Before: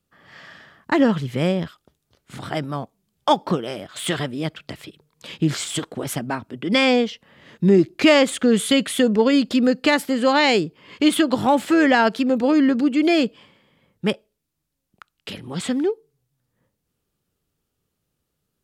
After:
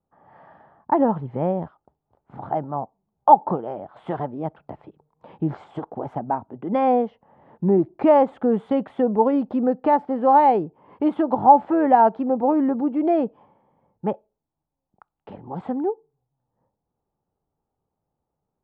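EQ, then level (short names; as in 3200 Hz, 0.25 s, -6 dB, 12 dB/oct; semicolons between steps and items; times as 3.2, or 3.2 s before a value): synth low-pass 840 Hz, resonance Q 4.9; -5.0 dB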